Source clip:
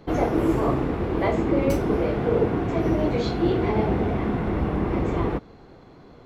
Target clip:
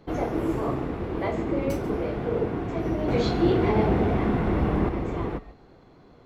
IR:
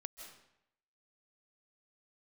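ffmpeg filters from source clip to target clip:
-filter_complex "[0:a]asettb=1/sr,asplit=3[s0][s1][s2];[s0]atrim=end=3.084[s3];[s1]atrim=start=3.08:end=4.89,asetpts=PTS-STARTPTS,afade=t=in:d=0.004:c=qsin,afade=t=out:st=1.806:d=0.004:c=qsin,acontrast=53[s4];[s2]atrim=start=4.886[s5];[s3][s4]acrossfade=d=0.004:c1=hsin:c2=qsin[s6];[s6][s5]acrossfade=d=0.004:c1=qsin:c2=hsin[s7];[1:a]atrim=start_sample=2205,atrim=end_sample=6615[s8];[s7][s8]afir=irnorm=-1:irlink=0"

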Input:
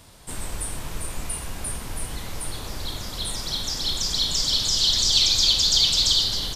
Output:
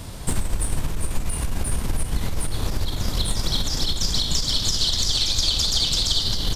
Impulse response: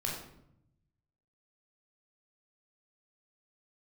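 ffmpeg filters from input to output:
-af "lowshelf=f=340:g=9,acompressor=threshold=0.0398:ratio=6,aeval=exprs='0.75*(cos(1*acos(clip(val(0)/0.75,-1,1)))-cos(1*PI/2))+0.299*(cos(4*acos(clip(val(0)/0.75,-1,1)))-cos(4*PI/2))':c=same,volume=2.82"

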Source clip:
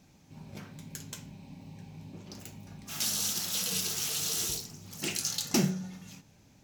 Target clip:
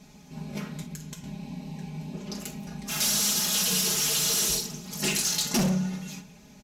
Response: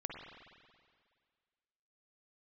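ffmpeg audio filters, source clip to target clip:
-filter_complex "[0:a]aecho=1:1:4.8:0.99,asettb=1/sr,asplit=3[s0][s1][s2];[s0]atrim=end=0.824[s3];[s1]atrim=start=0.82:end=1.24,asetpts=PTS-STARTPTS,afade=t=in:d=0.004:c=qsin,afade=t=out:st=0.416:d=0.004:c=qsin,acrossover=split=140[s4][s5];[s5]acompressor=threshold=0.00501:ratio=10[s6];[s4][s6]amix=inputs=2:normalize=0[s7];[s2]atrim=start=1.236[s8];[s3][s7]acrossfade=d=0.004:c1=hsin:c2=qsin[s9];[s9][s8]acrossfade=d=0.004:c1=qsin:c2=hsin,asoftclip=type=hard:threshold=0.0422,asplit=2[s10][s11];[1:a]atrim=start_sample=2205,afade=t=out:st=0.37:d=0.01,atrim=end_sample=16758,adelay=45[s12];[s11][s12]afir=irnorm=-1:irlink=0,volume=0.251[s13];[s10][s13]amix=inputs=2:normalize=0,aresample=32000,aresample=44100,volume=2"

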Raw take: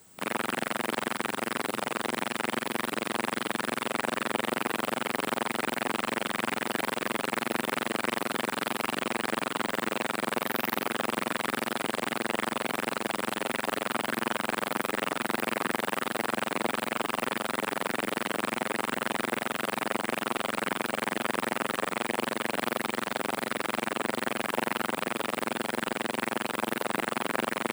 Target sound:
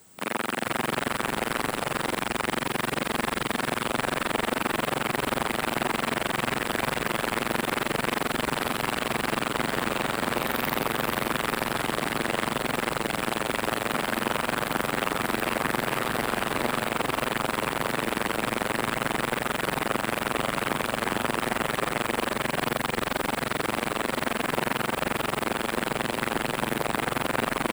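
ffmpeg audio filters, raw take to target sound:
-filter_complex "[0:a]asplit=6[s0][s1][s2][s3][s4][s5];[s1]adelay=438,afreqshift=-90,volume=0.631[s6];[s2]adelay=876,afreqshift=-180,volume=0.226[s7];[s3]adelay=1314,afreqshift=-270,volume=0.0822[s8];[s4]adelay=1752,afreqshift=-360,volume=0.0295[s9];[s5]adelay=2190,afreqshift=-450,volume=0.0106[s10];[s0][s6][s7][s8][s9][s10]amix=inputs=6:normalize=0,volume=1.19"

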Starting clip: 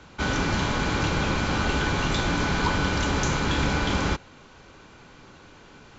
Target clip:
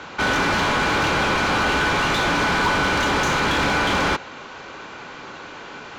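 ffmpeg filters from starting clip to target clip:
-filter_complex "[0:a]asplit=2[s0][s1];[s1]highpass=f=720:p=1,volume=14.1,asoftclip=type=tanh:threshold=0.266[s2];[s0][s2]amix=inputs=2:normalize=0,lowpass=f=2400:p=1,volume=0.501"

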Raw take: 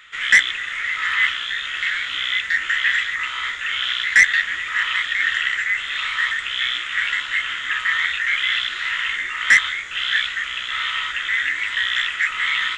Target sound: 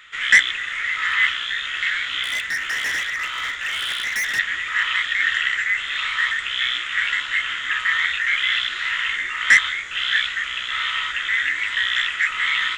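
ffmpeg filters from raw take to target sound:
-filter_complex "[0:a]asettb=1/sr,asplit=3[s0][s1][s2];[s0]atrim=end=2.234[s3];[s1]atrim=start=2.23:end=4.39,asetpts=PTS-STARTPTS,afade=t=in:d=0.004:c=qsin,afade=t=out:st=2.156:d=0.004:c=qsin,volume=11.2,asoftclip=hard,volume=0.0891[s4];[s2]atrim=start=4.386[s5];[s3][s4]acrossfade=d=0.004:c1=hsin:c2=qsin[s6];[s6][s5]acrossfade=d=0.004:c1=qsin:c2=hsin"

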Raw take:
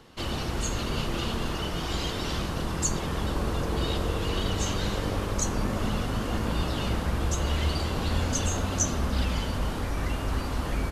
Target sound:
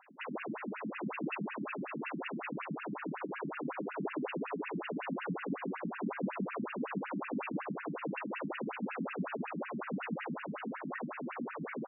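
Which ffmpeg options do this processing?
-af "asetrate=40517,aresample=44100,afftfilt=real='re*between(b*sr/1024,200*pow(2100/200,0.5+0.5*sin(2*PI*5.4*pts/sr))/1.41,200*pow(2100/200,0.5+0.5*sin(2*PI*5.4*pts/sr))*1.41)':imag='im*between(b*sr/1024,200*pow(2100/200,0.5+0.5*sin(2*PI*5.4*pts/sr))/1.41,200*pow(2100/200,0.5+0.5*sin(2*PI*5.4*pts/sr))*1.41)':win_size=1024:overlap=0.75,volume=1.12"

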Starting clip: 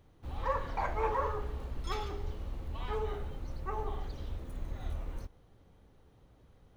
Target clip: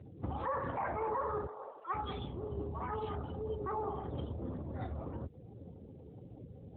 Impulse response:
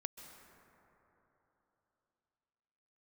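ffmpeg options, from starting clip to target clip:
-filter_complex "[0:a]acompressor=threshold=0.00562:ratio=3,highpass=f=45:p=1,asettb=1/sr,asplit=3[s0][s1][s2];[s0]atrim=end=1.464[s3];[s1]atrim=start=1.46:end=3.66,asetpts=PTS-STARTPTS,afade=t=in:d=0.004:c=qsin,afade=t=out:st=2.196:d=0.004:c=qsin,acrossover=split=440|2300[s4][s5][s6];[s6]adelay=190[s7];[s4]adelay=480[s8];[s8][s5][s7]amix=inputs=3:normalize=0,atrim=end_sample=97020[s9];[s2]atrim=start=3.656[s10];[s3][s9]acrossfade=d=0.004:c1=hsin:c2=qsin[s11];[s11][s10]acrossfade=d=0.004:c1=qsin:c2=hsin,afftfilt=real='re*gte(hypot(re,im),0.000282)':imag='im*gte(hypot(re,im),0.000282)':win_size=1024:overlap=0.75,alimiter=level_in=8.91:limit=0.0631:level=0:latency=1:release=14,volume=0.112,afftdn=nr=25:nf=-61,volume=6.31" -ar 8000 -c:a libopencore_amrnb -b:a 12200

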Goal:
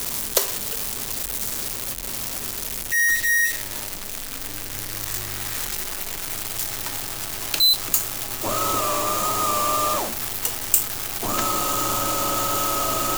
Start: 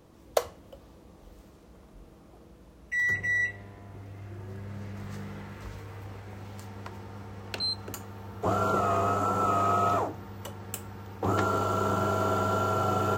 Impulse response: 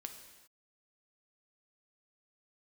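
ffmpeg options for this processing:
-af "aeval=exprs='val(0)+0.5*0.0316*sgn(val(0))':c=same,crystalizer=i=8.5:c=0,afreqshift=-86,volume=0.631"

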